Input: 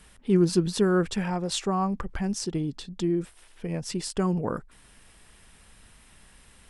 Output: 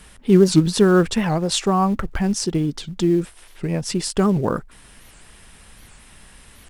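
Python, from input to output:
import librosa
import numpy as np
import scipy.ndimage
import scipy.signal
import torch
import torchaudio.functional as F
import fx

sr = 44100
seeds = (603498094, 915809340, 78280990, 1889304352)

p1 = fx.quant_float(x, sr, bits=2)
p2 = x + (p1 * librosa.db_to_amplitude(-12.0))
p3 = fx.record_warp(p2, sr, rpm=78.0, depth_cents=250.0)
y = p3 * librosa.db_to_amplitude(6.0)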